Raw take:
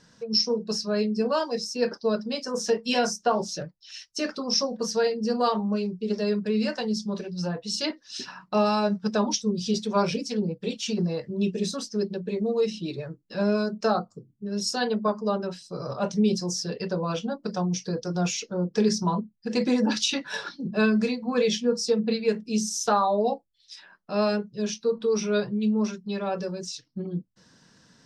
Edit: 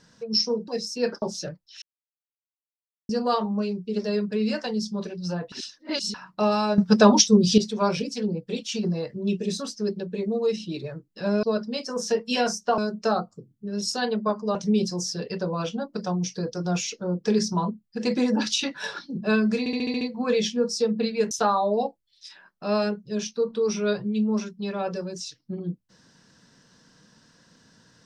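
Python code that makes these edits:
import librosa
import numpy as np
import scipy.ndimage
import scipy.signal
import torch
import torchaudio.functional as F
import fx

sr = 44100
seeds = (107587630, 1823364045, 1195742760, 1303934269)

y = fx.edit(x, sr, fx.cut(start_s=0.68, length_s=0.79),
    fx.move(start_s=2.01, length_s=1.35, to_s=13.57),
    fx.silence(start_s=3.96, length_s=1.27),
    fx.reverse_span(start_s=7.66, length_s=0.62),
    fx.clip_gain(start_s=8.92, length_s=0.8, db=9.5),
    fx.cut(start_s=15.34, length_s=0.71),
    fx.stutter(start_s=21.09, slice_s=0.07, count=7),
    fx.cut(start_s=22.39, length_s=0.39), tone=tone)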